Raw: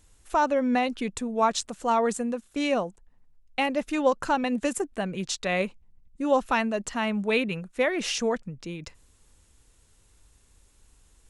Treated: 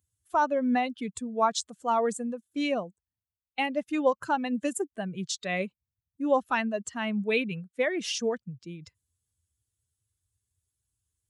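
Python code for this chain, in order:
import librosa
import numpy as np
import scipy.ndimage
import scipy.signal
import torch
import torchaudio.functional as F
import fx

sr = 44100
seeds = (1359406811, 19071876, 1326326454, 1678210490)

y = fx.bin_expand(x, sr, power=1.5)
y = scipy.signal.sosfilt(scipy.signal.butter(4, 90.0, 'highpass', fs=sr, output='sos'), y)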